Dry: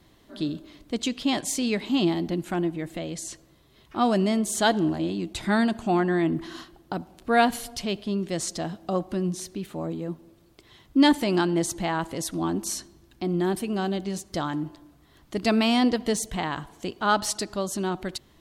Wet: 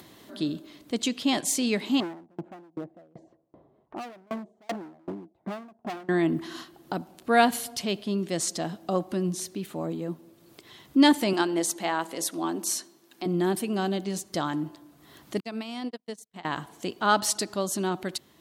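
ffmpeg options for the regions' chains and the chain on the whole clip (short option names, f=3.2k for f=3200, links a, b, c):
-filter_complex "[0:a]asettb=1/sr,asplit=3[a][b][c];[a]atrim=end=2.004[d];[b]atrim=start=2:end=6.09,asetpts=PTS-STARTPTS,afade=t=in:d=0.004:c=qsin,afade=t=out:st=4.086:d=0.004:c=qsin,lowpass=f=720:t=q:w=2.1,volume=26dB,asoftclip=hard,volume=-26dB,aeval=exprs='val(0)*pow(10,-36*if(lt(mod(2.6*n/s,1),2*abs(2.6)/1000),1-mod(2.6*n/s,1)/(2*abs(2.6)/1000),(mod(2.6*n/s,1)-2*abs(2.6)/1000)/(1-2*abs(2.6)/1000))/20)':c=same[e];[c]atrim=start=6.086[f];[d][e]acrossfade=d=0.004:c1=hsin:c2=qsin[g];[g][f]acrossfade=d=0.004:c1=qsin:c2=hsin,asettb=1/sr,asplit=3[h][i][j];[h]atrim=end=11.334[k];[i]atrim=start=11.33:end=13.26,asetpts=PTS-STARTPTS,afade=t=in:d=0.004:c=qsin,afade=t=out:st=1.926:d=0.004:c=qsin,highpass=290,bandreject=f=60:t=h:w=6,bandreject=f=120:t=h:w=6,bandreject=f=180:t=h:w=6,bandreject=f=240:t=h:w=6,bandreject=f=300:t=h:w=6,bandreject=f=360:t=h:w=6,bandreject=f=420:t=h:w=6,bandreject=f=480:t=h:w=6,bandreject=f=540:t=h:w=6,bandreject=f=600:t=h:w=6[l];[j]atrim=start=13.256[m];[k][l]acrossfade=d=0.004:c1=hsin:c2=qsin[n];[n][m]acrossfade=d=0.004:c1=qsin:c2=hsin,asettb=1/sr,asplit=3[o][p][q];[o]atrim=end=15.404[r];[p]atrim=start=15.4:end=16.45,asetpts=PTS-STARTPTS,afade=t=in:d=0.004:c=qsin,afade=t=out:st=1.046:d=0.004:c=qsin,acompressor=threshold=-26dB:ratio=5:attack=3.2:release=140:knee=1:detection=peak,agate=range=-50dB:threshold=-29dB:ratio=16:release=100:detection=peak[s];[q]atrim=start=16.446[t];[r][s]acrossfade=d=0.004:c1=hsin:c2=qsin[u];[u][t]acrossfade=d=0.004:c1=qsin:c2=hsin,highpass=140,highshelf=f=9.5k:g=6.5,acompressor=mode=upward:threshold=-43dB:ratio=2.5"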